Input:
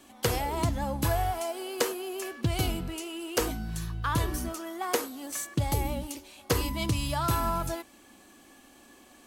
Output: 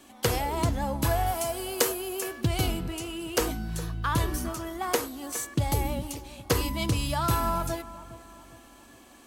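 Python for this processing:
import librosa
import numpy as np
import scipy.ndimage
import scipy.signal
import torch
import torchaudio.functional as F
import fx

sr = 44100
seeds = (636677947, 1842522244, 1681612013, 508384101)

y = fx.high_shelf(x, sr, hz=fx.line((1.26, 6100.0), (2.46, 9600.0)), db=9.5, at=(1.26, 2.46), fade=0.02)
y = fx.echo_bbd(y, sr, ms=410, stages=4096, feedback_pct=43, wet_db=-16.0)
y = y * 10.0 ** (1.5 / 20.0)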